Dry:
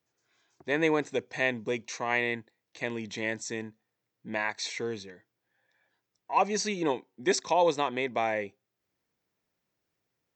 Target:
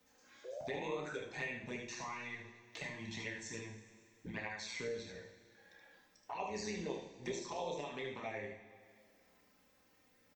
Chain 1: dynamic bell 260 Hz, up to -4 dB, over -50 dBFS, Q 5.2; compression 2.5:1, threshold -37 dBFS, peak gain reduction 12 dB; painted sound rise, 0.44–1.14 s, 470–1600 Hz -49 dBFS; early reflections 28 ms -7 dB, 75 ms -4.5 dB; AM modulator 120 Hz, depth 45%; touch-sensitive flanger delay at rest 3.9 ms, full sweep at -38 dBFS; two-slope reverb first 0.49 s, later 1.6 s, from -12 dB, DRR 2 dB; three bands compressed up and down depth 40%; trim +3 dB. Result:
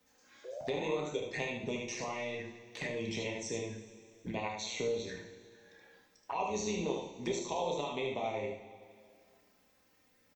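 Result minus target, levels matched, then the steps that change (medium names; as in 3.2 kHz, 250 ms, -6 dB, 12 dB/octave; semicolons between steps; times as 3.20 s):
compression: peak gain reduction -5.5 dB
change: compression 2.5:1, threshold -46.5 dBFS, peak gain reduction 17.5 dB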